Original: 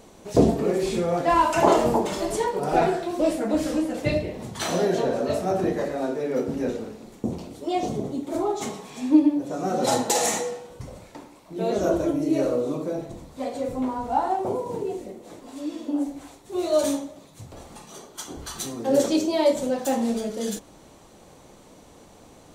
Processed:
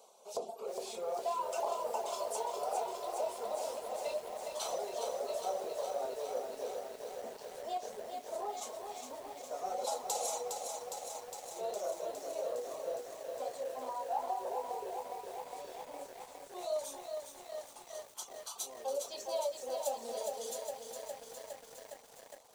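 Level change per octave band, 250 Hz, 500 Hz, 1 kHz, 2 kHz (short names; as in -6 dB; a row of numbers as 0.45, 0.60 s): -32.0, -13.0, -11.5, -18.0 dB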